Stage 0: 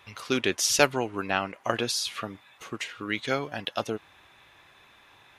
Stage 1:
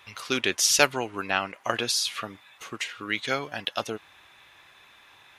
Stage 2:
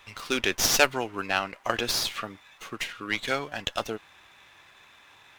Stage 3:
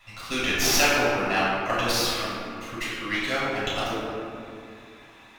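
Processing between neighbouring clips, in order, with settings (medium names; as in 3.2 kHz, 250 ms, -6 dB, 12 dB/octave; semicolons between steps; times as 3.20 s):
tilt shelf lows -3.5 dB, about 830 Hz
sliding maximum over 3 samples
reverberation RT60 2.5 s, pre-delay 3 ms, DRR -8 dB; trim -8.5 dB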